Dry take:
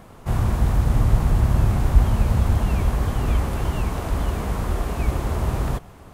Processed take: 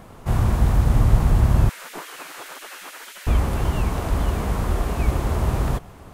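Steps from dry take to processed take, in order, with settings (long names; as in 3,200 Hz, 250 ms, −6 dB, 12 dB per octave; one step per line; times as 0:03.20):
0:01.69–0:03.27: gate on every frequency bin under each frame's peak −30 dB weak
level +1.5 dB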